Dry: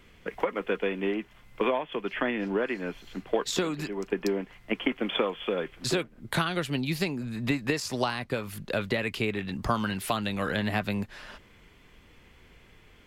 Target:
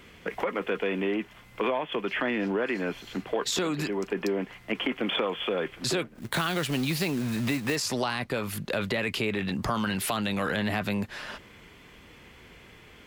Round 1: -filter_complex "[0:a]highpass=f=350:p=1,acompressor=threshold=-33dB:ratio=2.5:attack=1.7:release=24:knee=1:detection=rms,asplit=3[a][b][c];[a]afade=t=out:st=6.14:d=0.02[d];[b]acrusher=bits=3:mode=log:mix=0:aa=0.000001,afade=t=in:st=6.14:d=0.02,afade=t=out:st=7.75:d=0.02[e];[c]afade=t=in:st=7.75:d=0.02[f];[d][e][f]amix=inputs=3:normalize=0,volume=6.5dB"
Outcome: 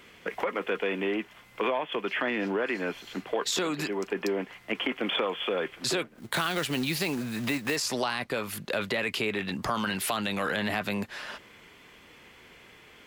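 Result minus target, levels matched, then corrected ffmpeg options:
125 Hz band -4.5 dB
-filter_complex "[0:a]highpass=f=95:p=1,acompressor=threshold=-33dB:ratio=2.5:attack=1.7:release=24:knee=1:detection=rms,asplit=3[a][b][c];[a]afade=t=out:st=6.14:d=0.02[d];[b]acrusher=bits=3:mode=log:mix=0:aa=0.000001,afade=t=in:st=6.14:d=0.02,afade=t=out:st=7.75:d=0.02[e];[c]afade=t=in:st=7.75:d=0.02[f];[d][e][f]amix=inputs=3:normalize=0,volume=6.5dB"

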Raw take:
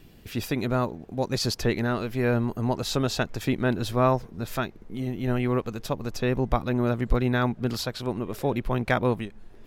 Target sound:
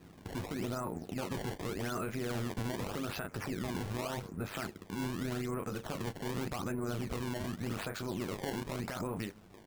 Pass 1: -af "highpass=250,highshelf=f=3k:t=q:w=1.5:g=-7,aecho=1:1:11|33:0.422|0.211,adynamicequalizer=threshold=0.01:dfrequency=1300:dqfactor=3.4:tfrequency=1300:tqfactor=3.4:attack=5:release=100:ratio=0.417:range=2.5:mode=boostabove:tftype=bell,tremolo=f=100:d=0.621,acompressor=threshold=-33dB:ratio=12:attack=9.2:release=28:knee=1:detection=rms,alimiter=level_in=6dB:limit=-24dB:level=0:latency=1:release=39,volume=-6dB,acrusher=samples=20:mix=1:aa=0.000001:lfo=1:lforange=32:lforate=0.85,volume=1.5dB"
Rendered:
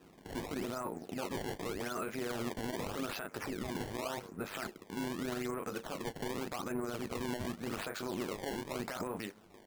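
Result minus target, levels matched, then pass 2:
125 Hz band -6.0 dB
-af "highpass=92,highshelf=f=3k:t=q:w=1.5:g=-7,aecho=1:1:11|33:0.422|0.211,adynamicequalizer=threshold=0.01:dfrequency=1300:dqfactor=3.4:tfrequency=1300:tqfactor=3.4:attack=5:release=100:ratio=0.417:range=2.5:mode=boostabove:tftype=bell,tremolo=f=100:d=0.621,acompressor=threshold=-33dB:ratio=12:attack=9.2:release=28:knee=1:detection=rms,alimiter=level_in=6dB:limit=-24dB:level=0:latency=1:release=39,volume=-6dB,acrusher=samples=20:mix=1:aa=0.000001:lfo=1:lforange=32:lforate=0.85,volume=1.5dB"

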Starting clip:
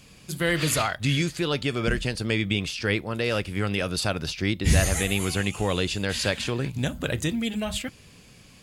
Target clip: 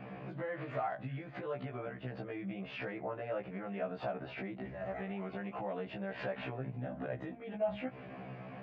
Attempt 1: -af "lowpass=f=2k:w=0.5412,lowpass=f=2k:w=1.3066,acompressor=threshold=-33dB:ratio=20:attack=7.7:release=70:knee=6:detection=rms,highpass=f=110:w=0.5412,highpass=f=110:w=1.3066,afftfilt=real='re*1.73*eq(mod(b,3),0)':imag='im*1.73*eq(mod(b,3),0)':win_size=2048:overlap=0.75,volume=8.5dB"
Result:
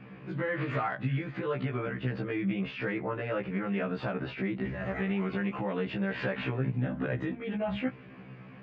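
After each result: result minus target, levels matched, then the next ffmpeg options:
compressor: peak gain reduction -11.5 dB; 500 Hz band -3.5 dB
-af "lowpass=f=2k:w=0.5412,lowpass=f=2k:w=1.3066,acompressor=threshold=-45dB:ratio=20:attack=7.7:release=70:knee=6:detection=rms,highpass=f=110:w=0.5412,highpass=f=110:w=1.3066,afftfilt=real='re*1.73*eq(mod(b,3),0)':imag='im*1.73*eq(mod(b,3),0)':win_size=2048:overlap=0.75,volume=8.5dB"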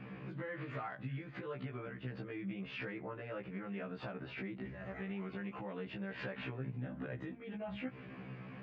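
500 Hz band -3.5 dB
-af "lowpass=f=2k:w=0.5412,lowpass=f=2k:w=1.3066,acompressor=threshold=-45dB:ratio=20:attack=7.7:release=70:knee=6:detection=rms,highpass=f=110:w=0.5412,highpass=f=110:w=1.3066,equalizer=f=680:w=2.2:g=13,afftfilt=real='re*1.73*eq(mod(b,3),0)':imag='im*1.73*eq(mod(b,3),0)':win_size=2048:overlap=0.75,volume=8.5dB"

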